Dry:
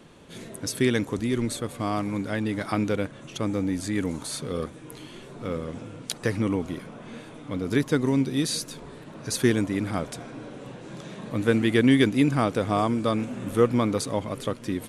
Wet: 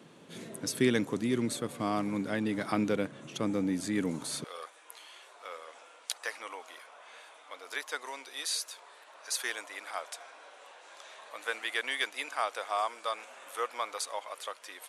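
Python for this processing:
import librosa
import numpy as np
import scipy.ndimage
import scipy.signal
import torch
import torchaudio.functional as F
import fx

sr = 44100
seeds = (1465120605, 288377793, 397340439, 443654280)

y = fx.highpass(x, sr, hz=fx.steps((0.0, 130.0), (4.44, 690.0)), slope=24)
y = y * 10.0 ** (-3.5 / 20.0)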